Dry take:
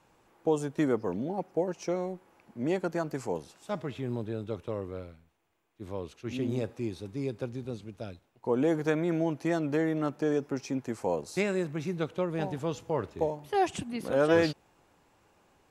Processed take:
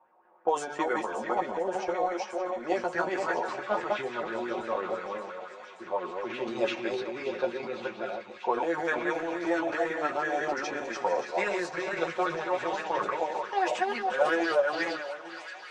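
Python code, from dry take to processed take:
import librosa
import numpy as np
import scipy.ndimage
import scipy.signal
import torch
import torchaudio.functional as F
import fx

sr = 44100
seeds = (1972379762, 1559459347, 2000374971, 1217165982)

y = fx.reverse_delay_fb(x, sr, ms=225, feedback_pct=41, wet_db=-2)
y = scipy.signal.sosfilt(scipy.signal.butter(2, 6600.0, 'lowpass', fs=sr, output='sos'), y)
y = fx.env_lowpass(y, sr, base_hz=950.0, full_db=-22.5)
y = scipy.signal.sosfilt(scipy.signal.butter(2, 500.0, 'highpass', fs=sr, output='sos'), y)
y = y + 0.54 * np.pad(y, (int(5.5 * sr / 1000.0), 0))[:len(y)]
y = fx.transient(y, sr, attack_db=5, sustain_db=9)
y = fx.rider(y, sr, range_db=4, speed_s=0.5)
y = fx.chorus_voices(y, sr, voices=6, hz=0.14, base_ms=13, depth_ms=4.9, mix_pct=40)
y = fx.echo_wet_highpass(y, sr, ms=576, feedback_pct=79, hz=1500.0, wet_db=-10.5)
y = fx.bell_lfo(y, sr, hz=5.9, low_hz=700.0, high_hz=1800.0, db=11)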